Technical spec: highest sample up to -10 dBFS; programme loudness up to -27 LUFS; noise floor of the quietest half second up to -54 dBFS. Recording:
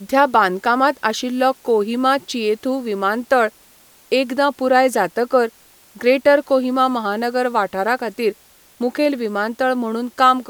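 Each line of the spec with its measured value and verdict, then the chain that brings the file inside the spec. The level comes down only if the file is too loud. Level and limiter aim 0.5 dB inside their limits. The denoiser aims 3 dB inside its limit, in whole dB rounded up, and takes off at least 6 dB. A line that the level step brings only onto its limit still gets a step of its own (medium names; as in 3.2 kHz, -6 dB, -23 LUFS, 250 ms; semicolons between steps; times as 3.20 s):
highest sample -2.0 dBFS: fail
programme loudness -18.5 LUFS: fail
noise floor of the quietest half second -50 dBFS: fail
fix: trim -9 dB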